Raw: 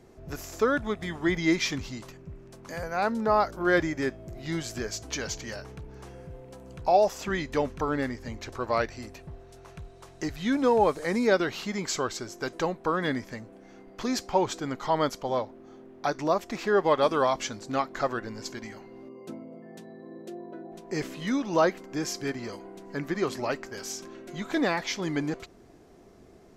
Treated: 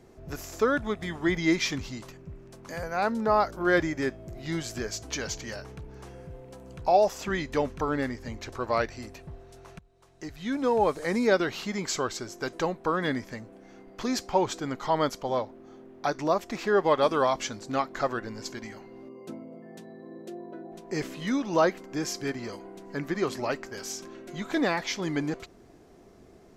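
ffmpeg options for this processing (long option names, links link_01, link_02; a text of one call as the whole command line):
ffmpeg -i in.wav -filter_complex "[0:a]asplit=2[link_01][link_02];[link_01]atrim=end=9.79,asetpts=PTS-STARTPTS,afade=type=out:start_time=9.786:duration=0.004:curve=hsin:silence=0.0944061[link_03];[link_02]atrim=start=9.79,asetpts=PTS-STARTPTS,afade=type=in:duration=1.26:silence=0.0944061[link_04];[link_03][link_04]concat=n=2:v=0:a=1" out.wav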